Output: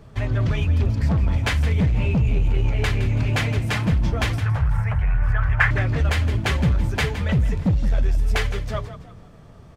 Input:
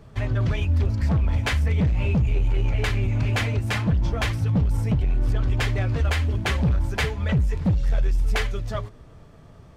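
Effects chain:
0:04.40–0:05.71: drawn EQ curve 120 Hz 0 dB, 200 Hz −30 dB, 680 Hz +1 dB, 1,700 Hz +14 dB, 3,700 Hz −11 dB
echo with shifted repeats 164 ms, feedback 37%, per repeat +35 Hz, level −12.5 dB
level +1.5 dB

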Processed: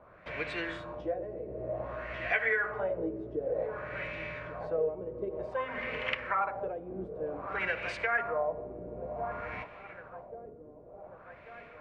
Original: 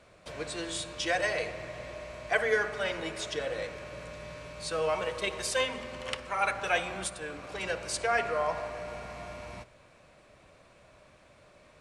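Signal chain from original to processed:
0:00.98–0:03.37: double-tracking delay 16 ms −3 dB
feedback echo with a low-pass in the loop 1,141 ms, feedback 70%, low-pass 2,400 Hz, level −16 dB
downward compressor 4 to 1, threshold −33 dBFS, peak gain reduction 12.5 dB
auto-filter low-pass sine 0.54 Hz 350–2,500 Hz
dynamic equaliser 2,000 Hz, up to +4 dB, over −46 dBFS, Q 1.7

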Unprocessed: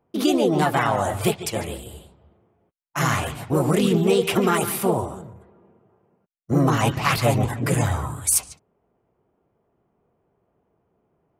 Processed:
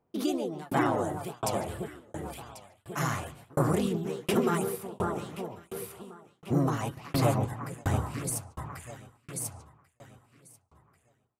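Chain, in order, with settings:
delay that swaps between a low-pass and a high-pass 545 ms, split 1,400 Hz, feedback 51%, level −3.5 dB
shaped tremolo saw down 1.4 Hz, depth 100%
dynamic equaliser 2,800 Hz, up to −4 dB, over −43 dBFS, Q 1
level −5 dB

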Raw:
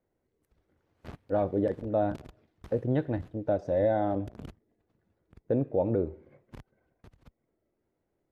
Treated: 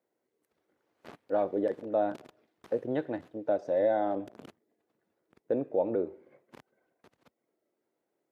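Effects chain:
high-pass filter 300 Hz 12 dB per octave

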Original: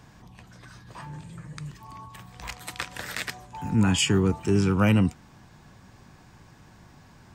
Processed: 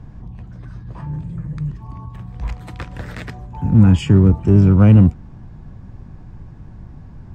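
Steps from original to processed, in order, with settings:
spectral tilt −4.5 dB per octave
in parallel at −7 dB: hard clipping −15 dBFS, distortion −5 dB
on the sum: level −2 dB

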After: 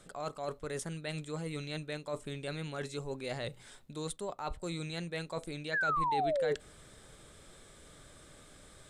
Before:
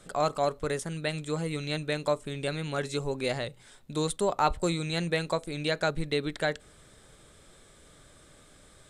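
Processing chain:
reversed playback
downward compressor 10 to 1, threshold −35 dBFS, peak gain reduction 16 dB
reversed playback
sound drawn into the spectrogram fall, 0:05.73–0:06.55, 410–1,800 Hz −31 dBFS

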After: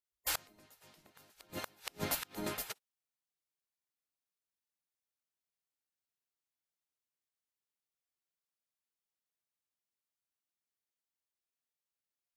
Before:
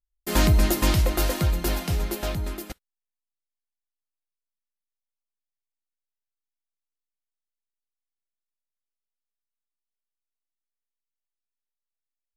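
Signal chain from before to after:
gate on every frequency bin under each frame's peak −15 dB weak
gate with flip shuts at −21 dBFS, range −35 dB

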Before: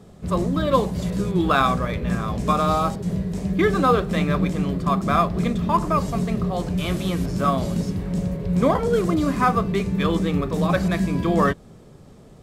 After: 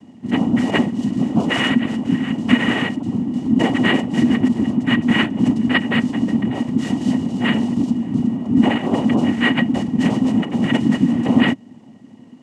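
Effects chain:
cochlear-implant simulation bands 4
hollow resonant body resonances 240/1,900/2,900 Hz, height 17 dB, ringing for 50 ms
level −5 dB

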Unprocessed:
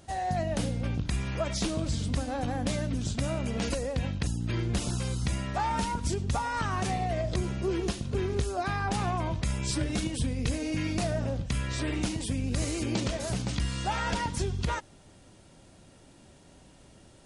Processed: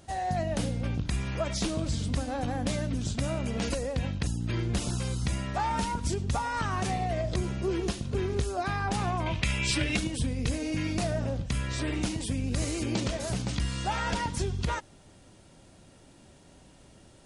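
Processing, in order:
0:09.26–0:09.97: parametric band 2,600 Hz +14 dB 1.1 octaves

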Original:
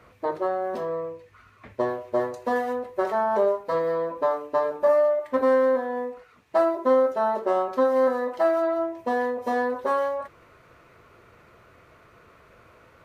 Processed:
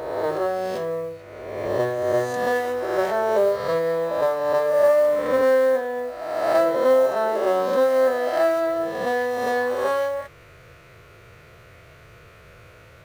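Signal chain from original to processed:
peak hold with a rise ahead of every peak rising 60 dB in 1.45 s
octave-band graphic EQ 125/250/1,000 Hz +4/−11/−10 dB
noise that follows the level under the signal 31 dB
level +6.5 dB

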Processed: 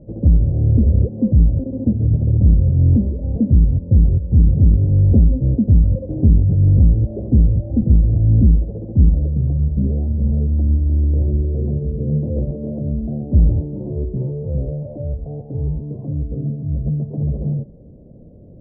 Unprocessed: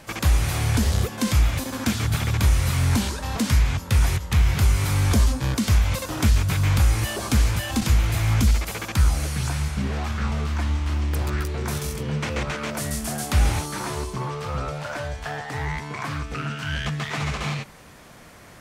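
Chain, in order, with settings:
elliptic low-pass filter 560 Hz, stop band 60 dB
low-shelf EQ 340 Hz +8 dB
saturating transformer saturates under 94 Hz
level +2 dB

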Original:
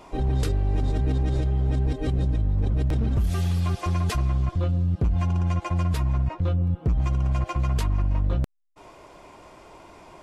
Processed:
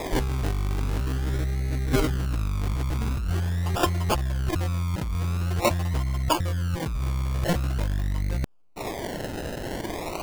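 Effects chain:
in parallel at −10.5 dB: soft clipping −29.5 dBFS, distortion −9 dB
on the sum: sample-and-hold swept by an LFO 30×, swing 60% 0.45 Hz
compressor whose output falls as the input rises −30 dBFS, ratio −1
level +5 dB

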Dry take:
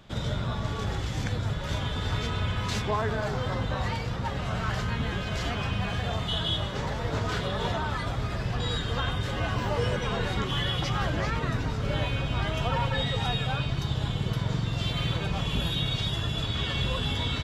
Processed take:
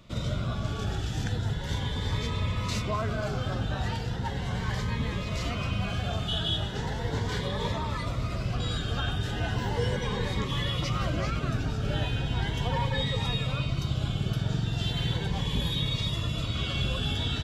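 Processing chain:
phaser whose notches keep moving one way rising 0.37 Hz

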